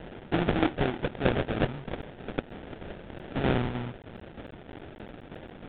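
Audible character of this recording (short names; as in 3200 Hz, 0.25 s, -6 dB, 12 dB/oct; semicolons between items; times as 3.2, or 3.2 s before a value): a quantiser's noise floor 8-bit, dither triangular; tremolo saw down 3.2 Hz, depth 60%; aliases and images of a low sample rate 1100 Hz, jitter 20%; µ-law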